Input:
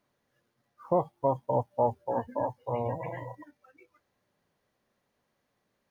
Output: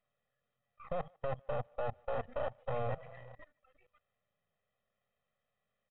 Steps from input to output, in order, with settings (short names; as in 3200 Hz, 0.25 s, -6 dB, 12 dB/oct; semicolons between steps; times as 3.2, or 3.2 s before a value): half-wave gain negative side -12 dB; high shelf 2200 Hz +4.5 dB; comb 1.6 ms, depth 87%; limiter -22 dBFS, peak gain reduction 9 dB; level quantiser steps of 17 dB; speakerphone echo 0.15 s, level -29 dB; downsampling 8000 Hz